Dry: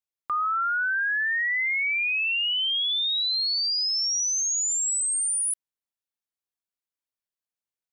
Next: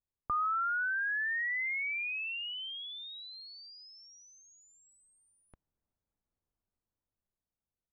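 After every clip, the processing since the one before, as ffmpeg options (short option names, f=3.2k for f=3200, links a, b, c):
-af "lowpass=1.2k,aemphasis=mode=reproduction:type=riaa,dynaudnorm=f=330:g=9:m=8dB,volume=-1.5dB"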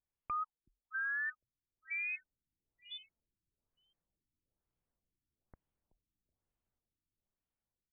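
-filter_complex "[0:a]asoftclip=type=tanh:threshold=-33.5dB,asplit=4[a][b][c][d];[b]adelay=376,afreqshift=-45,volume=-16dB[e];[c]adelay=752,afreqshift=-90,volume=-25.9dB[f];[d]adelay=1128,afreqshift=-135,volume=-35.8dB[g];[a][e][f][g]amix=inputs=4:normalize=0,afftfilt=real='re*lt(b*sr/1024,350*pow(3600/350,0.5+0.5*sin(2*PI*1.1*pts/sr)))':imag='im*lt(b*sr/1024,350*pow(3600/350,0.5+0.5*sin(2*PI*1.1*pts/sr)))':win_size=1024:overlap=0.75"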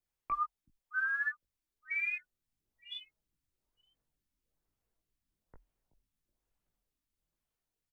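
-filter_complex "[0:a]afreqshift=-42,aphaser=in_gain=1:out_gain=1:delay=3.4:decay=0.3:speed=1.5:type=triangular,asplit=2[a][b];[b]adelay=19,volume=-5dB[c];[a][c]amix=inputs=2:normalize=0,volume=2dB"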